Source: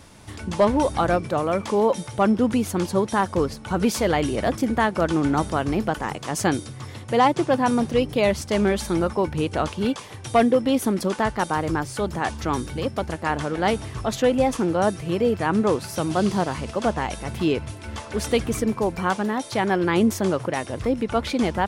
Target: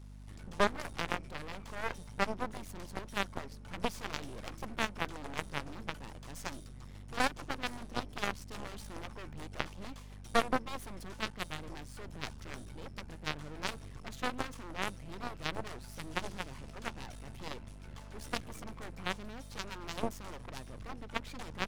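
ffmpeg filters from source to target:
-af "aeval=exprs='0.376*(cos(1*acos(clip(val(0)/0.376,-1,1)))-cos(1*PI/2))+0.168*(cos(3*acos(clip(val(0)/0.376,-1,1)))-cos(3*PI/2))':c=same,aeval=exprs='max(val(0),0)':c=same,aeval=exprs='val(0)+0.00631*(sin(2*PI*50*n/s)+sin(2*PI*2*50*n/s)/2+sin(2*PI*3*50*n/s)/3+sin(2*PI*4*50*n/s)/4+sin(2*PI*5*50*n/s)/5)':c=same,volume=0.596"

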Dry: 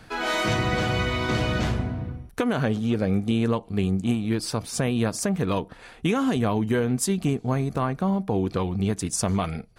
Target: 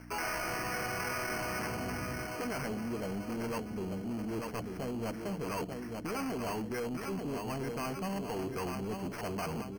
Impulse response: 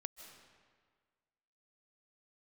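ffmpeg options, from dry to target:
-filter_complex "[0:a]bandreject=f=530:w=12,afwtdn=0.0251,equalizer=f=2600:w=1.5:g=5,areverse,acompressor=threshold=0.0178:ratio=10,areverse,aeval=exprs='val(0)+0.00398*(sin(2*PI*60*n/s)+sin(2*PI*2*60*n/s)/2+sin(2*PI*3*60*n/s)/3+sin(2*PI*4*60*n/s)/4+sin(2*PI*5*60*n/s)/5)':c=same,asplit=2[s0][s1];[s1]adelay=890,lowpass=f=2200:p=1,volume=0.398,asplit=2[s2][s3];[s3]adelay=890,lowpass=f=2200:p=1,volume=0.49,asplit=2[s4][s5];[s5]adelay=890,lowpass=f=2200:p=1,volume=0.49,asplit=2[s6][s7];[s7]adelay=890,lowpass=f=2200:p=1,volume=0.49,asplit=2[s8][s9];[s9]adelay=890,lowpass=f=2200:p=1,volume=0.49,asplit=2[s10][s11];[s11]adelay=890,lowpass=f=2200:p=1,volume=0.49[s12];[s0][s2][s4][s6][s8][s10][s12]amix=inputs=7:normalize=0,asplit=2[s13][s14];[s14]highpass=f=720:p=1,volume=17.8,asoftclip=type=tanh:threshold=0.0631[s15];[s13][s15]amix=inputs=2:normalize=0,lowpass=f=3100:p=1,volume=0.501,acrossover=split=560[s16][s17];[s17]acrusher=samples=12:mix=1:aa=0.000001[s18];[s16][s18]amix=inputs=2:normalize=0,volume=0.631"

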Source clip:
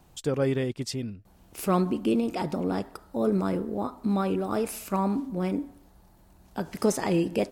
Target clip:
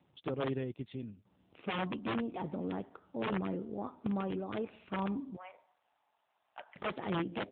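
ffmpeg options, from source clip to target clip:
-filter_complex "[0:a]aeval=exprs='(mod(7.94*val(0)+1,2)-1)/7.94':c=same,asettb=1/sr,asplit=3[s0][s1][s2];[s0]atrim=end=5.364[s3];[s1]atrim=start=5.36:end=6.76,asetpts=PTS-STARTPTS,afade=t=in:d=0.004:c=qsin,afade=t=out:st=1.396:d=0.004:c=qsin,asuperpass=centerf=1400:order=12:qfactor=0.54[s4];[s2]atrim=start=6.756[s5];[s3][s4]acrossfade=d=0.004:c1=hsin:c2=qsin[s6];[s6][s5]acrossfade=d=0.004:c1=qsin:c2=hsin,volume=0.376" -ar 8000 -c:a libopencore_amrnb -b:a 7400

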